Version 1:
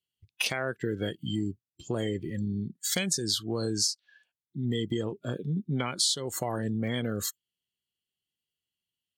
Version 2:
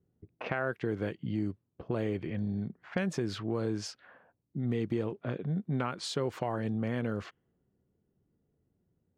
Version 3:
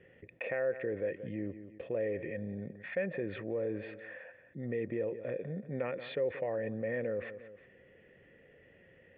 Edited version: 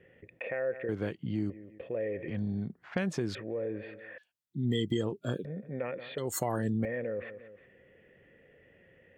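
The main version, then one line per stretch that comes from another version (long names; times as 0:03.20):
3
0:00.89–0:01.50: punch in from 2
0:02.28–0:03.35: punch in from 2
0:04.18–0:05.45: punch in from 1
0:06.18–0:06.85: punch in from 1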